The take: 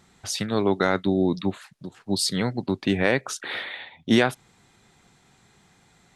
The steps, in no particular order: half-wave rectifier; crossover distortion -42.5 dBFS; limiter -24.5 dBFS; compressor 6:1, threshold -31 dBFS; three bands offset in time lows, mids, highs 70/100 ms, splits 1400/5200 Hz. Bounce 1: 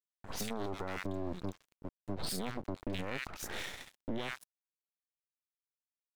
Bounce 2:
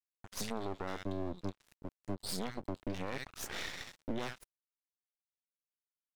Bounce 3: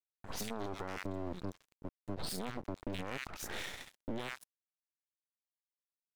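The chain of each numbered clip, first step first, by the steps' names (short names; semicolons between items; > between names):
half-wave rectifier > three bands offset in time > crossover distortion > limiter > compressor; three bands offset in time > crossover distortion > compressor > half-wave rectifier > limiter; half-wave rectifier > three bands offset in time > limiter > compressor > crossover distortion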